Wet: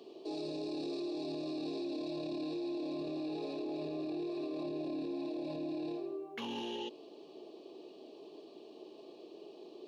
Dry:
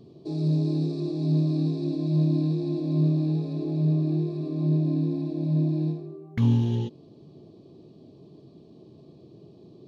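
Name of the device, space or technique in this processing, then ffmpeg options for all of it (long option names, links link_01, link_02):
laptop speaker: -af "highpass=frequency=360:width=0.5412,highpass=frequency=360:width=1.3066,equalizer=frequency=840:width_type=o:width=0.25:gain=4,equalizer=frequency=2800:width_type=o:width=0.34:gain=10,alimiter=level_in=12dB:limit=-24dB:level=0:latency=1:release=17,volume=-12dB,volume=3.5dB"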